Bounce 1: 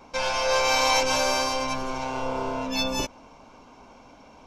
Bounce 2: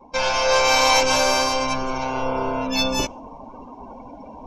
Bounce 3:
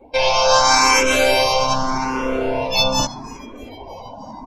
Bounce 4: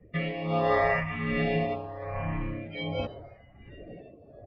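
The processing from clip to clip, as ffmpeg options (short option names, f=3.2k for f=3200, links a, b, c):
-af "afftdn=nr=23:nf=-46,areverse,acompressor=mode=upward:threshold=-34dB:ratio=2.5,areverse,volume=5dB"
-filter_complex "[0:a]asplit=7[a][b][c][d][e][f][g];[b]adelay=315,afreqshift=-120,volume=-20dB[h];[c]adelay=630,afreqshift=-240,volume=-23.9dB[i];[d]adelay=945,afreqshift=-360,volume=-27.8dB[j];[e]adelay=1260,afreqshift=-480,volume=-31.6dB[k];[f]adelay=1575,afreqshift=-600,volume=-35.5dB[l];[g]adelay=1890,afreqshift=-720,volume=-39.4dB[m];[a][h][i][j][k][l][m]amix=inputs=7:normalize=0,asplit=2[n][o];[o]afreqshift=0.82[p];[n][p]amix=inputs=2:normalize=1,volume=6.5dB"
-af "highpass=f=230:t=q:w=0.5412,highpass=f=230:t=q:w=1.307,lowpass=f=3.1k:t=q:w=0.5176,lowpass=f=3.1k:t=q:w=0.7071,lowpass=f=3.1k:t=q:w=1.932,afreqshift=-360,tremolo=f=1.3:d=0.65,volume=-8dB"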